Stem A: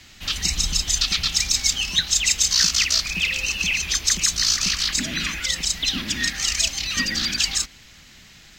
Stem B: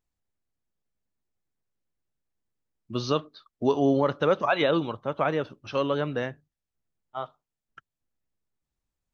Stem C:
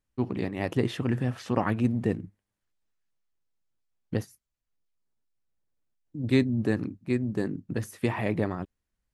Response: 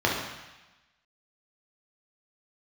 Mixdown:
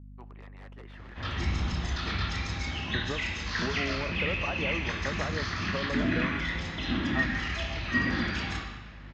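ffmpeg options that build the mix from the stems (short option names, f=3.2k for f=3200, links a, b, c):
-filter_complex "[0:a]adelay=950,volume=-7.5dB,asplit=2[a][b];[b]volume=-5.5dB[c];[1:a]acompressor=threshold=-31dB:ratio=6,aeval=exprs='val(0)+0.00251*(sin(2*PI*50*n/s)+sin(2*PI*2*50*n/s)/2+sin(2*PI*3*50*n/s)/3+sin(2*PI*4*50*n/s)/4+sin(2*PI*5*50*n/s)/5)':c=same,volume=-1.5dB,asplit=2[d][e];[2:a]highpass=1k,aeval=exprs='(mod(35.5*val(0)+1,2)-1)/35.5':c=same,volume=-6dB[f];[e]apad=whole_len=420609[g];[a][g]sidechaincompress=threshold=-55dB:ratio=8:attack=16:release=680[h];[3:a]atrim=start_sample=2205[i];[c][i]afir=irnorm=-1:irlink=0[j];[h][d][f][j]amix=inputs=4:normalize=0,aeval=exprs='val(0)+0.00316*(sin(2*PI*50*n/s)+sin(2*PI*2*50*n/s)/2+sin(2*PI*3*50*n/s)/3+sin(2*PI*4*50*n/s)/4+sin(2*PI*5*50*n/s)/5)':c=same,lowpass=1.7k"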